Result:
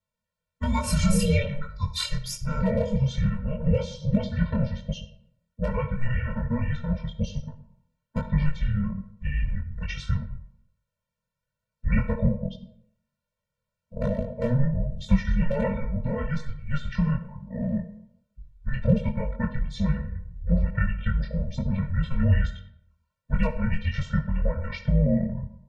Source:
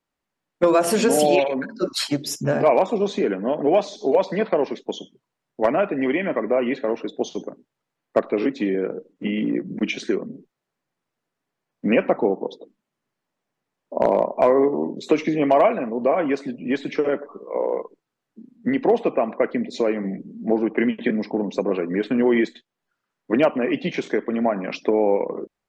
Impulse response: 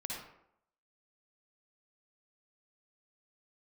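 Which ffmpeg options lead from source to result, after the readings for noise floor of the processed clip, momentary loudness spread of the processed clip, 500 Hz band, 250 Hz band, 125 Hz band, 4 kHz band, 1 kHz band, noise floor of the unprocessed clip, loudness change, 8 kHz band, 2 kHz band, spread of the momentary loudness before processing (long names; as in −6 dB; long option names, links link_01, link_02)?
below −85 dBFS, 10 LU, −14.0 dB, −5.0 dB, +11.5 dB, −4.5 dB, −13.5 dB, −83 dBFS, −5.5 dB, can't be measured, −6.5 dB, 10 LU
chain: -filter_complex "[0:a]asplit=2[link_01][link_02];[1:a]atrim=start_sample=2205[link_03];[link_02][link_03]afir=irnorm=-1:irlink=0,volume=-9.5dB[link_04];[link_01][link_04]amix=inputs=2:normalize=0,afreqshift=-270,flanger=delay=20:depth=4.2:speed=1.2,afftfilt=real='re*eq(mod(floor(b*sr/1024/220),2),0)':imag='im*eq(mod(floor(b*sr/1024/220),2),0)':win_size=1024:overlap=0.75"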